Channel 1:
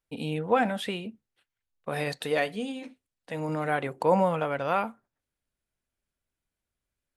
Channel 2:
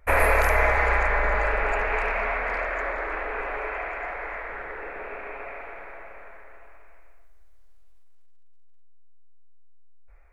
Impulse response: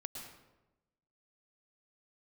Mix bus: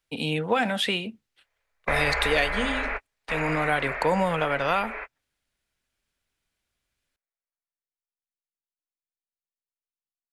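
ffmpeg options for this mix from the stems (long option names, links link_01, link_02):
-filter_complex "[0:a]volume=2.5dB,asplit=2[link_01][link_02];[1:a]lowpass=7100,adelay=1300,volume=-8.5dB[link_03];[link_02]apad=whole_len=512715[link_04];[link_03][link_04]sidechaingate=range=-56dB:threshold=-48dB:ratio=16:detection=peak[link_05];[link_01][link_05]amix=inputs=2:normalize=0,equalizer=frequency=3300:width_type=o:width=2.8:gain=8,acrossover=split=180|3000[link_06][link_07][link_08];[link_07]acompressor=threshold=-20dB:ratio=6[link_09];[link_06][link_09][link_08]amix=inputs=3:normalize=0"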